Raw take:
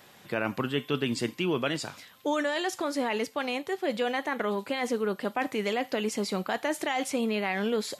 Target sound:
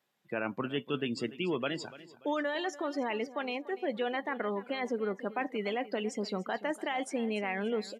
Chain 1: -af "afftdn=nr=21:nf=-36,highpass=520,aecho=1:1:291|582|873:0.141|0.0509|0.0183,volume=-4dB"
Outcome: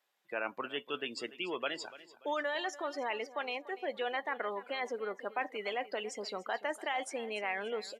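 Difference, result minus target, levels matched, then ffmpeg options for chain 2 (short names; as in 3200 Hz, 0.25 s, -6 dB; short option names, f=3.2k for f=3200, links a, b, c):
125 Hz band -14.5 dB
-af "afftdn=nr=21:nf=-36,highpass=140,aecho=1:1:291|582|873:0.141|0.0509|0.0183,volume=-4dB"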